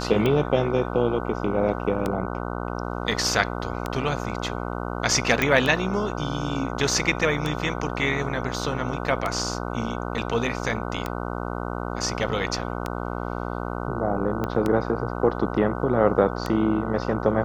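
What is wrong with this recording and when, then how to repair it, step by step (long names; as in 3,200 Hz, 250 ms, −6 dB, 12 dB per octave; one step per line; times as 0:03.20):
mains buzz 60 Hz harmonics 25 −30 dBFS
scratch tick 33 1/3 rpm −12 dBFS
0:05.42: click −8 dBFS
0:14.44: click −14 dBFS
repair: click removal
hum removal 60 Hz, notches 25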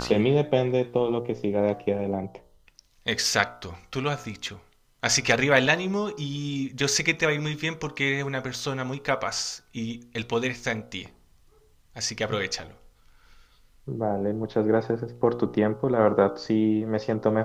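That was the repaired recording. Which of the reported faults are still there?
0:14.44: click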